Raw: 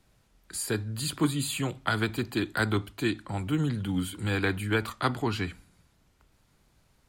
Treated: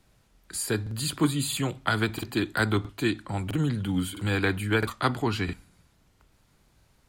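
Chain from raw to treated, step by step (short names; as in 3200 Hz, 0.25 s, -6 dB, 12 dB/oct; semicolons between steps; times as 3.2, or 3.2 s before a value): crackling interface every 0.66 s, samples 2048, repeat, from 0.82; gain +2 dB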